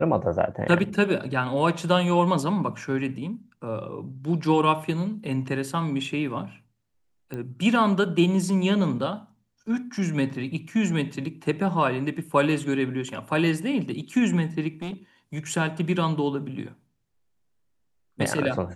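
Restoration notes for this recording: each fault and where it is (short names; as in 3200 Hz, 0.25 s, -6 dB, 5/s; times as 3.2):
7.34 pop -22 dBFS
14.82–14.94 clipped -29 dBFS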